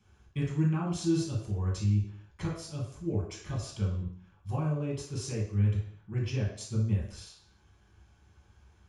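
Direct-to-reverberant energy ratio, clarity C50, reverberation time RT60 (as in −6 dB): −4.5 dB, 3.5 dB, 0.55 s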